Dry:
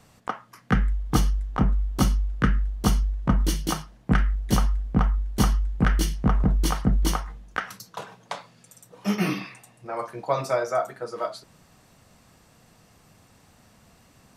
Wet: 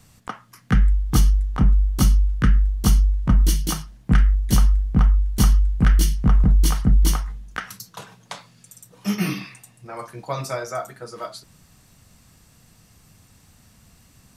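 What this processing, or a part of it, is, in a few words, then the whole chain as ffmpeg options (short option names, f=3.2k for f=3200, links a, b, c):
smiley-face EQ: -af "lowshelf=f=150:g=8,equalizer=f=600:t=o:w=1.9:g=-5.5,highshelf=f=5.1k:g=7.5"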